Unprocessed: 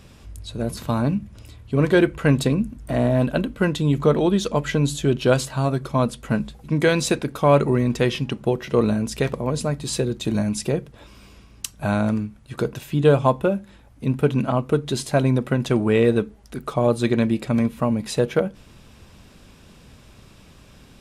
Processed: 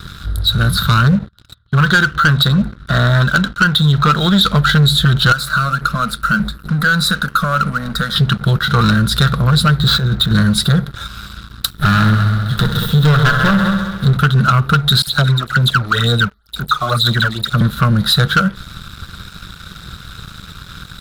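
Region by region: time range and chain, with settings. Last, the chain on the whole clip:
1.15–4.45 expander -36 dBFS + LPF 5600 Hz + low shelf 180 Hz -8.5 dB
5.32–8.16 compressor 3:1, threshold -24 dBFS + fixed phaser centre 560 Hz, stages 8
9.8–10.32 high shelf 5800 Hz -12 dB + negative-ratio compressor -27 dBFS + decimation joined by straight lines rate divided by 4×
11.7–14.17 minimum comb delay 0.34 ms + multi-head echo 66 ms, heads all three, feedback 48%, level -11.5 dB
15.02–17.61 low shelf 460 Hz -7.5 dB + phaser stages 12, 2.1 Hz, lowest notch 150–2300 Hz + dispersion lows, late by 50 ms, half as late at 2200 Hz
whole clip: EQ curve 190 Hz 0 dB, 270 Hz -22 dB, 490 Hz -16 dB, 940 Hz -14 dB, 1400 Hz +14 dB, 2400 Hz -23 dB, 3800 Hz +11 dB, 6100 Hz -17 dB, 14000 Hz +2 dB; compressor 3:1, threshold -24 dBFS; sample leveller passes 3; gain +7 dB

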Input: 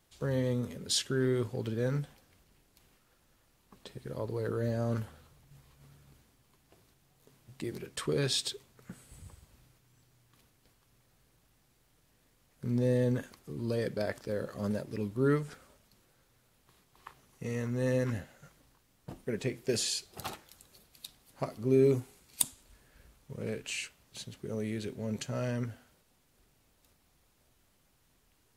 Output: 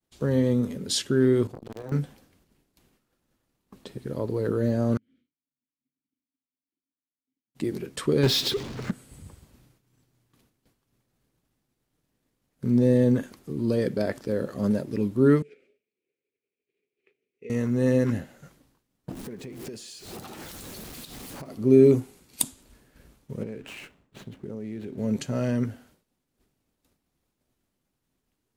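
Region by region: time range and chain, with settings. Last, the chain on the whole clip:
1.47–1.92 level quantiser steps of 13 dB + wrapped overs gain 30.5 dB + core saturation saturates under 610 Hz
4.97–7.55 compressor 10:1, threshold -56 dBFS + vowel filter i + echo 0.643 s -8.5 dB
8.23–8.91 LPF 5800 Hz 24 dB/oct + power-law curve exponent 0.5
15.42–17.5 upward compressor, threshold -49 dBFS + double band-pass 1000 Hz, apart 2.5 oct
19.11–21.5 zero-crossing step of -41 dBFS + compressor 16:1, threshold -43 dBFS
23.43–24.98 median filter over 9 samples + high shelf 11000 Hz -5 dB + compressor 4:1, threshold -41 dBFS
whole clip: expander -59 dBFS; bell 260 Hz +8 dB 1.7 oct; gain +3 dB

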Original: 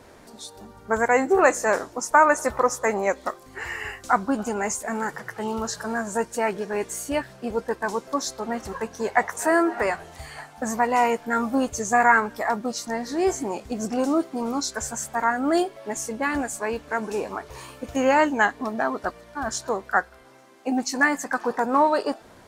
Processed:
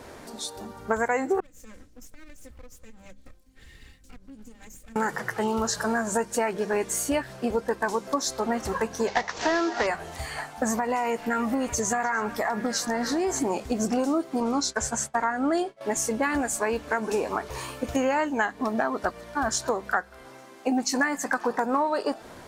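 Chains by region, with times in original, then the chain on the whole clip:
1.4–4.96 minimum comb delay 3.8 ms + passive tone stack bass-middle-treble 10-0-1 + compressor 10:1, threshold -45 dBFS
9.07–9.87 CVSD 32 kbps + high shelf 4000 Hz +11 dB
10.74–13.39 compressor 4:1, threshold -26 dBFS + delay with a stepping band-pass 0.299 s, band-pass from 3400 Hz, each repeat -0.7 oct, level -8 dB
14.4–15.81 Bessel low-pass 8100 Hz + expander -33 dBFS
whole clip: notches 50/100/150/200 Hz; compressor 6:1, threshold -27 dBFS; gain +5 dB

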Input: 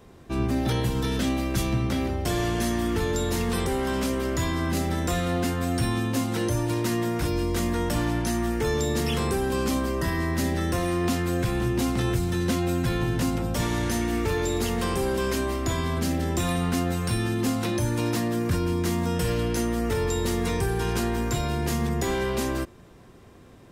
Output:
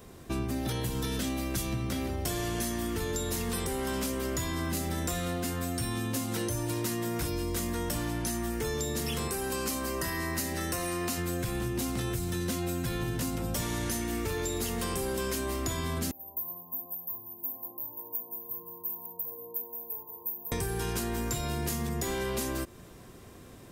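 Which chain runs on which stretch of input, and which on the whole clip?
9.28–11.18 low shelf 410 Hz -7 dB + notch 3400 Hz, Q 10
16.11–20.52 brick-wall FIR band-stop 1100–13000 Hz + differentiator + dark delay 62 ms, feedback 74%, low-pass 840 Hz, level -4 dB
whole clip: high shelf 6400 Hz +12 dB; notch 850 Hz, Q 23; compressor, threshold -29 dBFS

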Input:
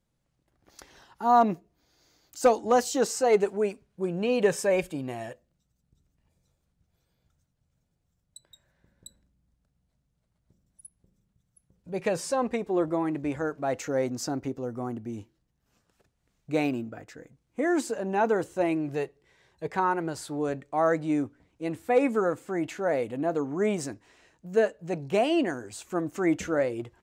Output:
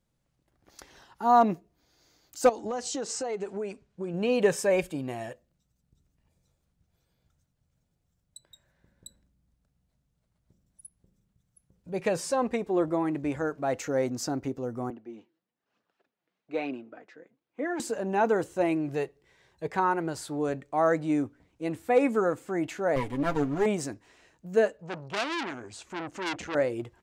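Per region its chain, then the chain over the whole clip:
2.49–4.14 LPF 8600 Hz 24 dB/oct + compressor 8:1, threshold -29 dBFS
14.9–17.8 HPF 150 Hz + three-band isolator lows -13 dB, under 240 Hz, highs -23 dB, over 4400 Hz + flange 1.1 Hz, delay 0.1 ms, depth 6.4 ms, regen +44%
22.96–23.66 minimum comb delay 0.55 ms + comb 7.2 ms, depth 64%
24.77–26.55 LPF 6500 Hz + core saturation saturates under 3800 Hz
whole clip: dry

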